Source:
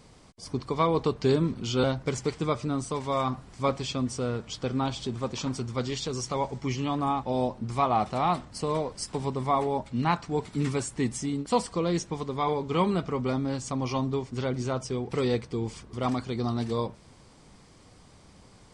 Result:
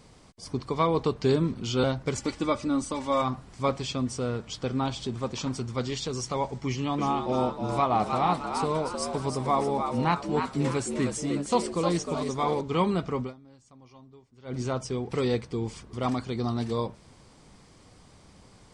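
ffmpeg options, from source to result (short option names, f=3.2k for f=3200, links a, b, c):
-filter_complex "[0:a]asettb=1/sr,asplit=3[a][b][c];[a]atrim=end=2.154[d];[b]atrim=start=2.15:end=3.22,asetpts=PTS-STARTPTS,afade=t=in:d=0.004:c=qsin,afade=t=out:st=1.066:d=0.004:c=qsin,aecho=1:1:3.5:0.69,atrim=end_sample=47187[e];[c]atrim=start=3.216[f];[d][e]acrossfade=d=0.004:c1=hsin:c2=qsin[g];[g][f]acrossfade=d=0.004:c1=qsin:c2=hsin,asettb=1/sr,asplit=3[h][i][j];[h]atrim=end=6.674[k];[i]atrim=start=6.67:end=12.61,asetpts=PTS-STARTPTS,afade=t=in:d=0.004:c=qsin,afade=t=out:st=5.936:d=0.004:c=qsin,asplit=6[l][m][n][o][p][q];[m]adelay=309,afreqshift=82,volume=-6dB[r];[n]adelay=618,afreqshift=164,volume=-13.7dB[s];[o]adelay=927,afreqshift=246,volume=-21.5dB[t];[p]adelay=1236,afreqshift=328,volume=-29.2dB[u];[q]adelay=1545,afreqshift=410,volume=-37dB[v];[l][r][s][t][u][v]amix=inputs=6:normalize=0,atrim=end_sample=261954[w];[j]atrim=start=12.606[x];[k][w]acrossfade=d=0.004:c1=hsin:c2=qsin[y];[y][x]acrossfade=d=0.004:c1=qsin:c2=hsin,asplit=3[z][aa][ab];[z]atrim=end=13.36,asetpts=PTS-STARTPTS,afade=t=out:st=13.22:d=0.14:c=qua:silence=0.0668344[ac];[aa]atrim=start=13.36:end=14.41,asetpts=PTS-STARTPTS,volume=-23.5dB[ad];[ab]atrim=start=14.41,asetpts=PTS-STARTPTS,afade=t=in:d=0.14:c=qua:silence=0.0668344[ae];[ac][ad][ae]concat=n=3:v=0:a=1"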